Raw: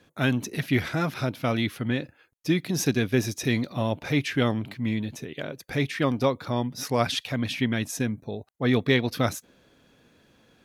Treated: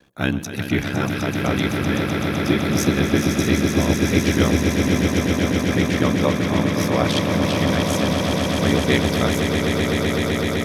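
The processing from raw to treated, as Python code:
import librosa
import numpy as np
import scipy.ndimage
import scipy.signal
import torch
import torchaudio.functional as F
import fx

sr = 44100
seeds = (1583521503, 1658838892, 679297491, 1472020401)

y = x * np.sin(2.0 * np.pi * 34.0 * np.arange(len(x)) / sr)
y = fx.vibrato(y, sr, rate_hz=1.5, depth_cents=17.0)
y = fx.echo_swell(y, sr, ms=127, loudest=8, wet_db=-7.5)
y = y * 10.0 ** (5.0 / 20.0)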